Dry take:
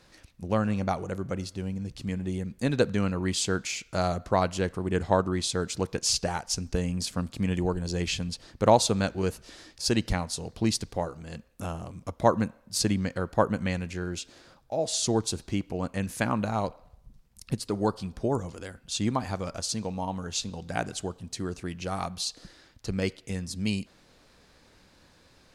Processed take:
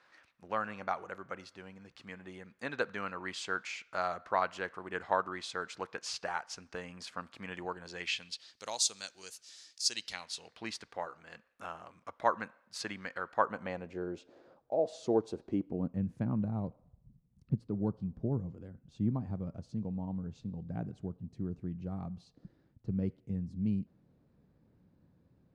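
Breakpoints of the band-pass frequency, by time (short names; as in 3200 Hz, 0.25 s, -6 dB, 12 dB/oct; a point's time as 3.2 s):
band-pass, Q 1.3
7.85 s 1400 Hz
8.72 s 6200 Hz
9.83 s 6200 Hz
10.73 s 1500 Hz
13.34 s 1500 Hz
13.97 s 480 Hz
15.41 s 480 Hz
16 s 150 Hz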